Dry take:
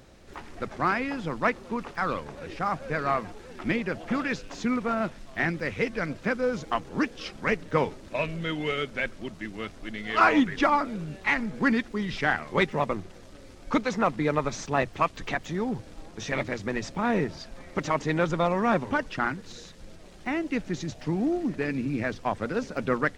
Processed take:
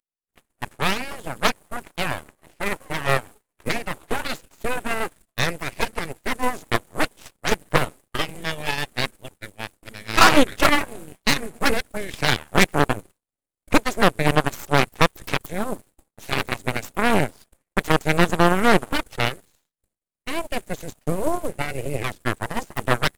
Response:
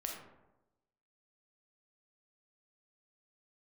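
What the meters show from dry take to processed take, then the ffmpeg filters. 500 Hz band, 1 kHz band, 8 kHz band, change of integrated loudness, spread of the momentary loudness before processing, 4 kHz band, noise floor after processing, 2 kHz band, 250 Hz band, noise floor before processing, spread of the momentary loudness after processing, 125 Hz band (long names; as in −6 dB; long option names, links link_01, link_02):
+3.5 dB, +4.5 dB, +13.0 dB, +5.0 dB, 11 LU, +12.5 dB, below −85 dBFS, +5.5 dB, +1.5 dB, −48 dBFS, 13 LU, +6.0 dB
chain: -af "aexciter=amount=12.7:drive=4.1:freq=7900,aeval=exprs='0.422*(cos(1*acos(clip(val(0)/0.422,-1,1)))-cos(1*PI/2))+0.0596*(cos(4*acos(clip(val(0)/0.422,-1,1)))-cos(4*PI/2))+0.168*(cos(6*acos(clip(val(0)/0.422,-1,1)))-cos(6*PI/2))+0.0596*(cos(7*acos(clip(val(0)/0.422,-1,1)))-cos(7*PI/2))':channel_layout=same,agate=range=-33dB:threshold=-40dB:ratio=3:detection=peak,volume=4.5dB"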